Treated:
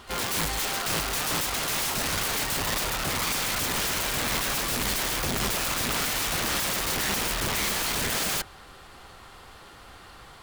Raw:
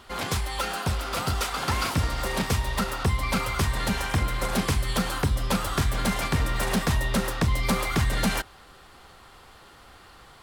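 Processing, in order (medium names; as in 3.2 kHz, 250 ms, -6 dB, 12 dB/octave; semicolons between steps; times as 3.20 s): integer overflow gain 25.5 dB; harmony voices +12 st -14 dB; trim +2.5 dB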